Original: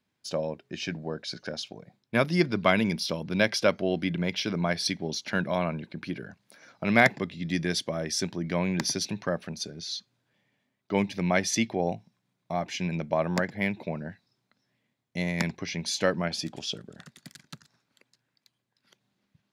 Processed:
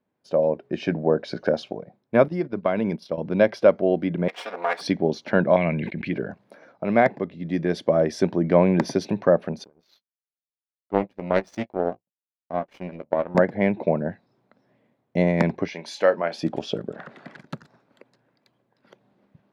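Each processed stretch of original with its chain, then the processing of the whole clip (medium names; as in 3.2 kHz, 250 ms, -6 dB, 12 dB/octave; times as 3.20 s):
2.28–3.18 s: gate -31 dBFS, range -14 dB + compression 2:1, threshold -34 dBFS
4.28–4.81 s: comb filter that takes the minimum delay 4.2 ms + high-pass 920 Hz
5.56–6.13 s: FFT filter 140 Hz 0 dB, 440 Hz -8 dB, 1.4 kHz -10 dB, 2 kHz +11 dB, 5.5 kHz -3 dB + gate -53 dBFS, range -20 dB + decay stretcher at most 35 dB/s
9.64–13.35 s: power-law waveshaper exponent 2 + doubling 16 ms -12 dB + loudspeaker Doppler distortion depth 0.19 ms
15.68–16.43 s: high-pass 1.1 kHz 6 dB/octave + doubling 31 ms -12.5 dB
16.93–17.39 s: jump at every zero crossing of -50.5 dBFS + low-pass 1.8 kHz + tilt EQ +4 dB/octave
whole clip: FFT filter 100 Hz 0 dB, 560 Hz +11 dB, 6.7 kHz -15 dB; level rider; trim -3.5 dB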